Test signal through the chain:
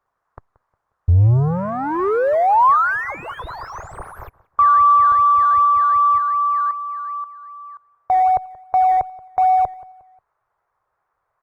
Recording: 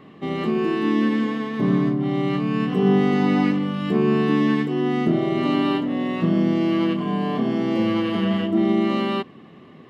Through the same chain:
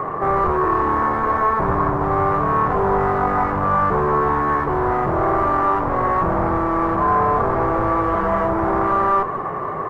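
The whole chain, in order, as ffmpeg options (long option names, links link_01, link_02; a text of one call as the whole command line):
ffmpeg -i in.wav -filter_complex "[0:a]asplit=2[link_01][link_02];[link_02]highpass=frequency=720:poles=1,volume=38dB,asoftclip=type=tanh:threshold=-8dB[link_03];[link_01][link_03]amix=inputs=2:normalize=0,lowpass=frequency=1700:poles=1,volume=-6dB,asplit=2[link_04][link_05];[link_05]adelay=179,lowpass=frequency=3000:poles=1,volume=-19dB,asplit=2[link_06][link_07];[link_07]adelay=179,lowpass=frequency=3000:poles=1,volume=0.38,asplit=2[link_08][link_09];[link_09]adelay=179,lowpass=frequency=3000:poles=1,volume=0.38[link_10];[link_04][link_06][link_08][link_10]amix=inputs=4:normalize=0,asplit=2[link_11][link_12];[link_12]acrusher=samples=13:mix=1:aa=0.000001:lfo=1:lforange=7.8:lforate=2.6,volume=-8.5dB[link_13];[link_11][link_13]amix=inputs=2:normalize=0,firequalizer=gain_entry='entry(110,0);entry(230,-21);entry(400,-8);entry(1100,1);entry(2900,-28);entry(4200,-29)':delay=0.05:min_phase=1,volume=1dB" -ar 48000 -c:a libopus -b:a 32k out.opus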